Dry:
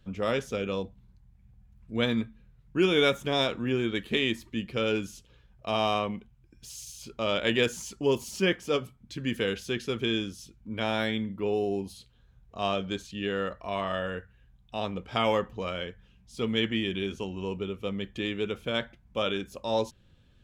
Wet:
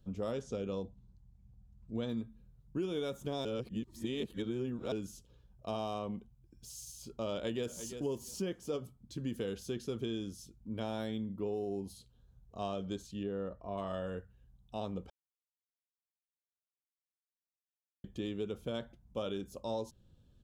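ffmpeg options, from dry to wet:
-filter_complex "[0:a]asettb=1/sr,asplit=3[a][b][c];[a]atrim=end=0.414[d];[b]atrim=start=0.41:end=2.09,asetpts=PTS-STARTPTS,afade=t=in:d=0.004:c=qsin,afade=t=out:st=1.676:d=0.004:c=qsin,lowpass=f=8.2k:w=0.5412,lowpass=f=8.2k:w=1.3066[e];[c]atrim=start=2.086[f];[d][e]acrossfade=d=0.004:c1=hsin:c2=qsin[g];[g][f]acrossfade=d=0.004:c1=qsin:c2=hsin,asplit=2[h][i];[i]afade=t=in:st=7.33:d=0.01,afade=t=out:st=7.91:d=0.01,aecho=0:1:340|680:0.16788|0.0251821[j];[h][j]amix=inputs=2:normalize=0,asettb=1/sr,asplit=3[k][l][m];[k]atrim=end=13.234[n];[l]atrim=start=13.23:end=13.78,asetpts=PTS-STARTPTS,afade=t=in:d=0.004:c=qsin,afade=t=out:st=0.546:d=0.004:c=qsin,lowpass=f=1k:p=1[o];[m]atrim=start=13.776[p];[n][o]acrossfade=d=0.004:c1=hsin:c2=qsin[q];[q][p]acrossfade=d=0.004:c1=qsin:c2=hsin,asplit=5[r][s][t][u][v];[r]atrim=end=3.452[w];[s]atrim=start=3.448:end=4.922,asetpts=PTS-STARTPTS,areverse[x];[t]atrim=start=4.918:end=15.1,asetpts=PTS-STARTPTS,afade=t=out:st=10.178:d=0.004:c=hsin[y];[u]atrim=start=15.1:end=18.04,asetpts=PTS-STARTPTS,volume=0[z];[v]atrim=start=18.04,asetpts=PTS-STARTPTS,afade=t=in:d=0.004:c=hsin[aa];[w][x]acrossfade=d=0.004:c1=hsin:c2=hsin[ab];[y][z][aa]concat=n=3:v=0:a=1[ac];[ab][ac]acrossfade=d=0.004:c1=hsin:c2=hsin,equalizer=f=2.1k:w=0.91:g=-14.5,acompressor=threshold=-30dB:ratio=6,volume=-3dB"

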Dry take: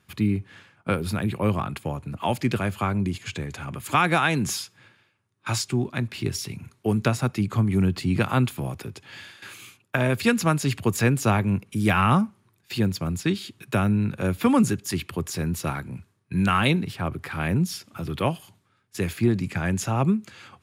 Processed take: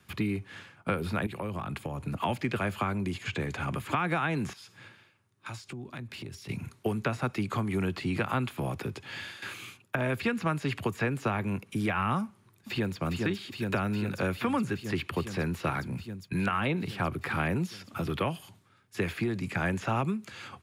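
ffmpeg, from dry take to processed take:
-filter_complex "[0:a]asettb=1/sr,asplit=3[a][b][c];[a]atrim=end=1.264[d];[b]atrim=start=1.26:end=2.01,asetpts=PTS-STARTPTS,afade=t=in:d=0.004:c=qsin,afade=t=out:st=0.746:d=0.004:c=qsin,acompressor=threshold=-33dB:ratio=10:attack=3.2:release=140:knee=1:detection=peak[e];[c]atrim=start=2.006[f];[d][e]acrossfade=d=0.004:c1=hsin:c2=qsin[g];[g][f]acrossfade=d=0.004:c1=qsin:c2=hsin,asettb=1/sr,asplit=3[h][i][j];[h]atrim=end=4.534[k];[i]atrim=start=4.53:end=6.49,asetpts=PTS-STARTPTS,afade=t=in:d=0.004:c=qsin,afade=t=out:st=1.956:d=0.004:c=qsin,acompressor=threshold=-41dB:ratio=6:attack=3.2:release=140:knee=1:detection=peak[l];[j]atrim=start=6.486[m];[k][l]acrossfade=d=0.004:c1=hsin:c2=qsin[n];[n][m]acrossfade=d=0.004:c1=qsin:c2=hsin,asplit=2[o][p];[p]afade=t=in:st=12.25:d=0.01,afade=t=out:st=13:d=0.01,aecho=0:1:410|820|1230|1640|2050|2460|2870|3280|3690|4100|4510|4920:0.473151|0.378521|0.302817|0.242253|0.193803|0.155042|0.124034|0.099227|0.0793816|0.0635053|0.0508042|0.0406434[q];[o][q]amix=inputs=2:normalize=0,acrossover=split=2800[r][s];[s]acompressor=threshold=-44dB:ratio=4:attack=1:release=60[t];[r][t]amix=inputs=2:normalize=0,alimiter=limit=-15.5dB:level=0:latency=1:release=459,acrossover=split=180|370|1200|4700[u][v][w][x][y];[u]acompressor=threshold=-39dB:ratio=4[z];[v]acompressor=threshold=-40dB:ratio=4[aa];[w]acompressor=threshold=-35dB:ratio=4[ab];[x]acompressor=threshold=-34dB:ratio=4[ac];[y]acompressor=threshold=-56dB:ratio=4[ad];[z][aa][ab][ac][ad]amix=inputs=5:normalize=0,volume=3dB"

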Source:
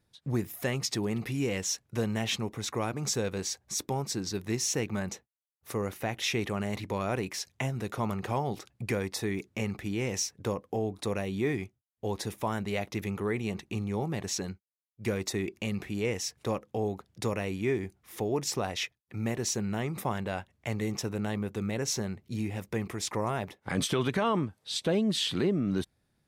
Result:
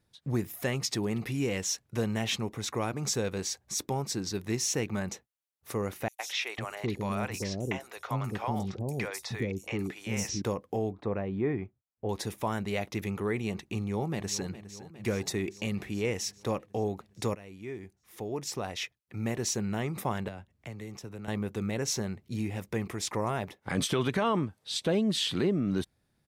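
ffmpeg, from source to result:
-filter_complex "[0:a]asettb=1/sr,asplit=3[a][b][c];[a]atrim=end=6.084[d];[b]atrim=start=6.08:end=10.42,asetpts=PTS-STARTPTS,afade=t=in:d=0.004:c=qsin,afade=t=out:st=4.336:d=0.004:c=qsin,acrossover=split=530|5900[e][f][g];[f]adelay=110[h];[e]adelay=500[i];[i][h][g]amix=inputs=3:normalize=0,atrim=end_sample=191394[j];[c]atrim=start=10.416[k];[d][j]acrossfade=d=0.004:c1=hsin:c2=qsin[l];[l][k]acrossfade=d=0.004:c1=qsin:c2=hsin,asettb=1/sr,asplit=3[m][n][o];[m]atrim=end=10.924[p];[n]atrim=start=10.92:end=12.09,asetpts=PTS-STARTPTS,afade=t=in:d=0.004:c=qsin,afade=t=out:st=1.166:d=0.004:c=qsin,lowpass=1.5k[q];[o]atrim=start=12.086[r];[p][q]acrossfade=d=0.004:c1=hsin:c2=qsin[s];[s][r]acrossfade=d=0.004:c1=qsin:c2=hsin,asplit=2[t][u];[u]afade=t=in:st=13.72:d=0.01,afade=t=out:st=14.49:d=0.01,aecho=0:1:410|820|1230|1640|2050|2460|2870|3280|3690:0.188365|0.131855|0.0922988|0.0646092|0.0452264|0.0316585|0.0221609|0.0155127|0.0108589[v];[t][v]amix=inputs=2:normalize=0,asettb=1/sr,asplit=3[w][x][y];[w]atrim=end=20.284[z];[x]atrim=start=20.28:end=21.28,asetpts=PTS-STARTPTS,afade=t=in:d=0.004:c=qsin,afade=t=out:st=0.996:d=0.004:c=qsin,acrossover=split=97|400[aa][ab][ac];[aa]acompressor=threshold=-50dB:ratio=4[ad];[ab]acompressor=threshold=-45dB:ratio=4[ae];[ac]acompressor=threshold=-47dB:ratio=4[af];[ad][ae][af]amix=inputs=3:normalize=0[ag];[y]atrim=start=21.276[ah];[z][ag]acrossfade=d=0.004:c1=hsin:c2=qsin[ai];[ai][ah]acrossfade=d=0.004:c1=qsin:c2=hsin,asplit=2[aj][ak];[aj]atrim=end=17.35,asetpts=PTS-STARTPTS,afade=t=out:st=17.346:d=0.004:c=hsin:silence=0.141254[al];[ak]atrim=start=17.35,asetpts=PTS-STARTPTS,afade=t=in:d=2.07:silence=0.141254[am];[al][am]concat=n=2:v=0:a=1"

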